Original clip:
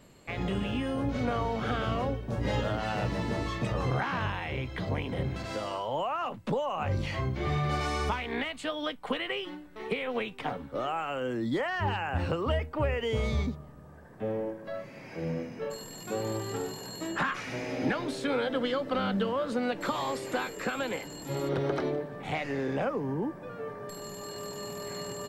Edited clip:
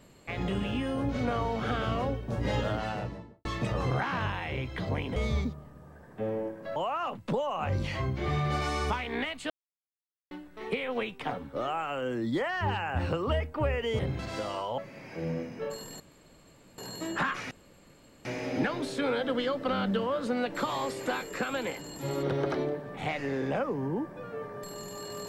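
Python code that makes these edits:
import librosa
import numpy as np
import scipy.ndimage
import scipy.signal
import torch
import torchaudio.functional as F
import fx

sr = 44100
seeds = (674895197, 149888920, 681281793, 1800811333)

y = fx.studio_fade_out(x, sr, start_s=2.71, length_s=0.74)
y = fx.edit(y, sr, fx.swap(start_s=5.16, length_s=0.79, other_s=13.18, other_length_s=1.6),
    fx.silence(start_s=8.69, length_s=0.81),
    fx.room_tone_fill(start_s=16.0, length_s=0.78),
    fx.insert_room_tone(at_s=17.51, length_s=0.74), tone=tone)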